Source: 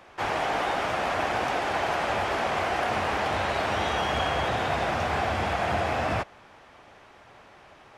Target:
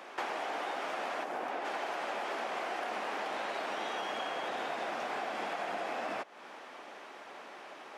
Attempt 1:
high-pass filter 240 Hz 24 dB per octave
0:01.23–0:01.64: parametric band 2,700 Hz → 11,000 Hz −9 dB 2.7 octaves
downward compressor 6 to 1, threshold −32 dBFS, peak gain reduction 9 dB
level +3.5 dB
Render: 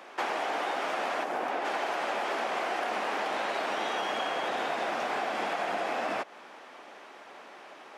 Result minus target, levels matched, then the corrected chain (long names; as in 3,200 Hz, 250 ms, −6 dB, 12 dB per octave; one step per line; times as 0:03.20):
downward compressor: peak gain reduction −5.5 dB
high-pass filter 240 Hz 24 dB per octave
0:01.23–0:01.64: parametric band 2,700 Hz → 11,000 Hz −9 dB 2.7 octaves
downward compressor 6 to 1, threshold −38.5 dBFS, peak gain reduction 14.5 dB
level +3.5 dB